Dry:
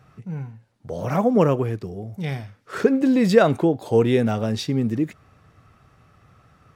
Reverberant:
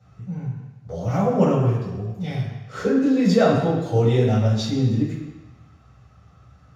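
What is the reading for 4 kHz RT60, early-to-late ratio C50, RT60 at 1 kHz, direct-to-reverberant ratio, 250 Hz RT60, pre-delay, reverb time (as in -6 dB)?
1.1 s, 1.5 dB, 1.2 s, -8.5 dB, 1.0 s, 3 ms, 1.1 s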